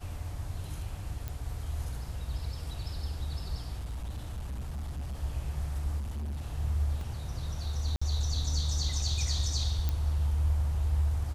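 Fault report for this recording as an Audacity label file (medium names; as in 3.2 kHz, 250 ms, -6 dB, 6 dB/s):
1.280000	1.280000	pop
3.790000	5.150000	clipped -33 dBFS
5.990000	6.410000	clipped -32.5 dBFS
7.010000	7.010000	dropout 2.2 ms
7.960000	8.020000	dropout 55 ms
9.890000	9.890000	pop -18 dBFS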